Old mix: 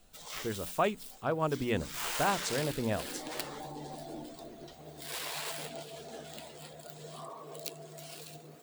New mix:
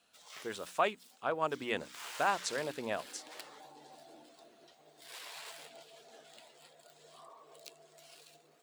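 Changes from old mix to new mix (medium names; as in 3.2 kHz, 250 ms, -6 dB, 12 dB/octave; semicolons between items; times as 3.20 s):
background -9.0 dB; master: add frequency weighting A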